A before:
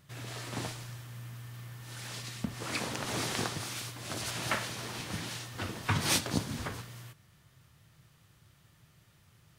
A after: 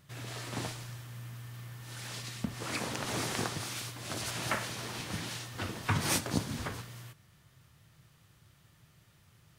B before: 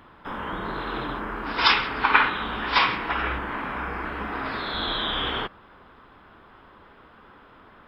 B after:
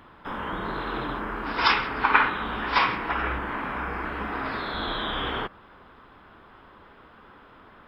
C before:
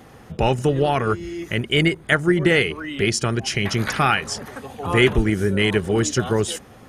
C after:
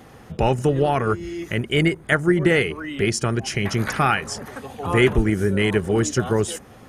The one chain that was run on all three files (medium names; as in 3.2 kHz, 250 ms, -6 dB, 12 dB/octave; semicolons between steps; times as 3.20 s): dynamic bell 3.7 kHz, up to -6 dB, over -39 dBFS, Q 1.1